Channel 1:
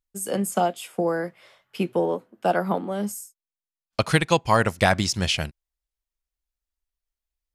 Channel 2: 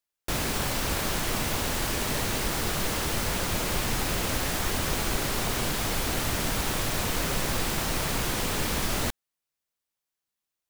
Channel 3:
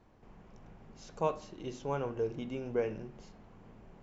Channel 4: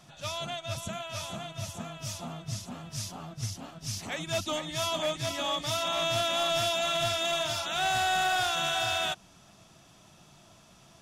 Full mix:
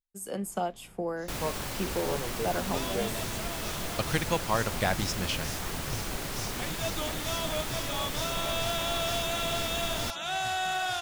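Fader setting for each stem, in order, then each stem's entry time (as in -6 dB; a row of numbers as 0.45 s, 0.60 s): -9.0 dB, -7.0 dB, -2.0 dB, -3.5 dB; 0.00 s, 1.00 s, 0.20 s, 2.50 s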